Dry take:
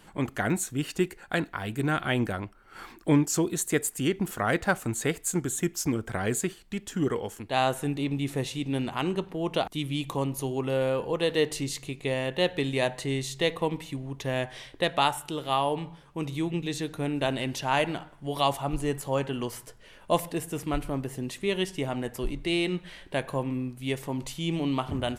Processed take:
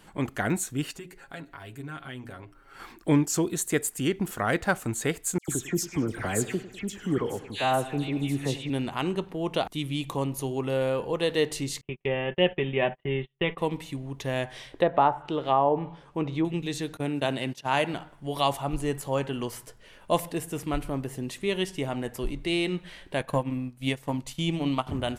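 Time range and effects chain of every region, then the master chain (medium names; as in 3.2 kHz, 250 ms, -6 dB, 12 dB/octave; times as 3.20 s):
0.91–2.80 s: comb 7.3 ms, depth 61% + compression 2:1, threshold -47 dBFS + hum notches 60/120/180/240/300/360/420/480/540/600 Hz
5.38–8.70 s: phase dispersion lows, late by 103 ms, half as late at 2.2 kHz + bucket-brigade echo 100 ms, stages 4096, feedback 60%, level -16.5 dB
11.81–13.58 s: steep low-pass 3.3 kHz 96 dB/octave + comb 5.2 ms, depth 61% + gate -37 dBFS, range -37 dB
14.71–16.45 s: low-pass that closes with the level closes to 1.2 kHz, closed at -24 dBFS + peaking EQ 600 Hz +5.5 dB 2.6 oct
16.97–17.94 s: high-pass 100 Hz 24 dB/octave + gate -34 dBFS, range -20 dB
23.20–24.87 s: band-stop 390 Hz, Q 5.3 + transient shaper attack +7 dB, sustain -9 dB
whole clip: none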